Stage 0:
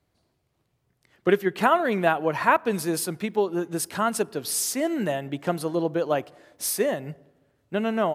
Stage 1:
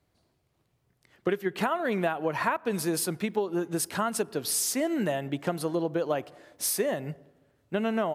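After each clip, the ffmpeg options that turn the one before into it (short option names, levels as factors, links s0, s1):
-af "acompressor=threshold=0.0708:ratio=12"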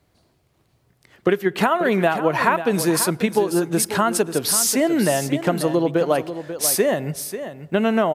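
-af "aecho=1:1:540:0.282,volume=2.82"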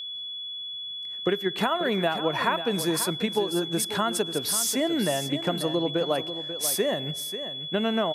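-af "aeval=exprs='val(0)+0.0501*sin(2*PI*3400*n/s)':c=same,volume=0.447"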